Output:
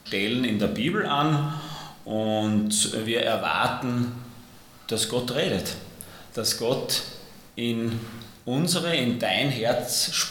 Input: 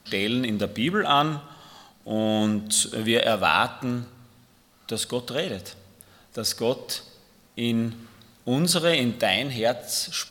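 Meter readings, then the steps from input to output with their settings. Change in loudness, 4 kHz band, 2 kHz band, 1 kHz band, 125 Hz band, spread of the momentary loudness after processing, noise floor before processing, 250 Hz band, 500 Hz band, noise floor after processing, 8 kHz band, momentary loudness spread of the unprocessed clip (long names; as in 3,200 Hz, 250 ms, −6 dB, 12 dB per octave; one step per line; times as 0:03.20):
−0.5 dB, 0.0 dB, −1.5 dB, −2.0 dB, +2.0 dB, 15 LU, −58 dBFS, 0.0 dB, −0.5 dB, −49 dBFS, +0.5 dB, 14 LU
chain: reversed playback
downward compressor 6 to 1, threshold −30 dBFS, peak gain reduction 14.5 dB
reversed playback
rectangular room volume 110 cubic metres, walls mixed, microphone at 0.42 metres
level +8 dB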